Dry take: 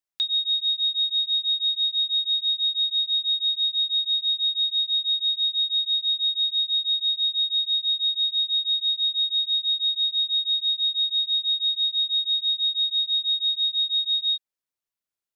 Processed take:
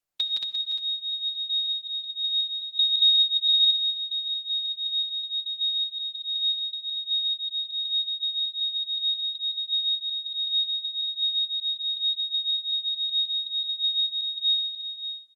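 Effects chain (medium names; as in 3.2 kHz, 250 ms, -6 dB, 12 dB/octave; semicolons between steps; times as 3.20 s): chunks repeated in reverse 374 ms, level -9.5 dB; 2.79–3.48 s: peaking EQ 3.5 kHz +9 dB 0.67 oct; comb 6.8 ms, depth 77%; loudspeakers at several distances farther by 57 m -2 dB, 78 m -3 dB; reverberation RT60 0.90 s, pre-delay 48 ms, DRR 12 dB; Opus 32 kbps 48 kHz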